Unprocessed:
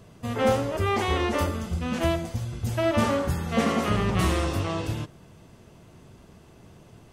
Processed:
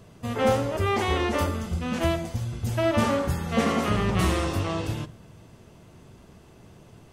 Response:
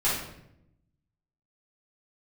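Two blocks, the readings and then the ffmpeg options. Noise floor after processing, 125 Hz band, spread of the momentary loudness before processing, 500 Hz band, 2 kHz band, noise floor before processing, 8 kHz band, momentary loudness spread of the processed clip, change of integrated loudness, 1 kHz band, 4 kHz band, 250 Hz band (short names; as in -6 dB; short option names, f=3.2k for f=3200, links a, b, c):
-52 dBFS, 0.0 dB, 8 LU, 0.0 dB, +0.5 dB, -52 dBFS, +0.5 dB, 7 LU, 0.0 dB, +0.5 dB, +0.5 dB, 0.0 dB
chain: -filter_complex "[0:a]asplit=2[a][b];[1:a]atrim=start_sample=2205[c];[b][c]afir=irnorm=-1:irlink=0,volume=-29.5dB[d];[a][d]amix=inputs=2:normalize=0"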